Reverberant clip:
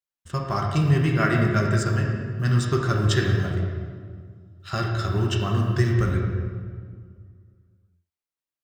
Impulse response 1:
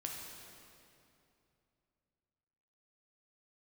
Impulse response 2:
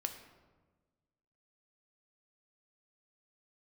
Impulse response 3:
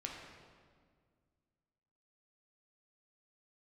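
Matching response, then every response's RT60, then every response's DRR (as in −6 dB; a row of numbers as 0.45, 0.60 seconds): 3; 2.7, 1.3, 1.9 seconds; −1.0, 5.5, −1.0 decibels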